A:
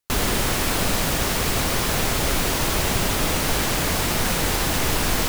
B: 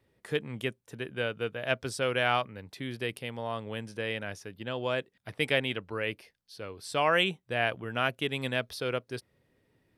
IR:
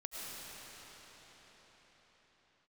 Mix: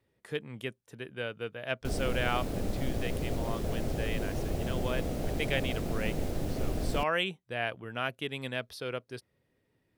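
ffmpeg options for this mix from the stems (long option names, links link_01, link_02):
-filter_complex "[0:a]afwtdn=0.0891,adelay=1750,volume=-10.5dB,asplit=2[link_01][link_02];[link_02]volume=-4.5dB[link_03];[1:a]volume=-4.5dB[link_04];[2:a]atrim=start_sample=2205[link_05];[link_03][link_05]afir=irnorm=-1:irlink=0[link_06];[link_01][link_04][link_06]amix=inputs=3:normalize=0"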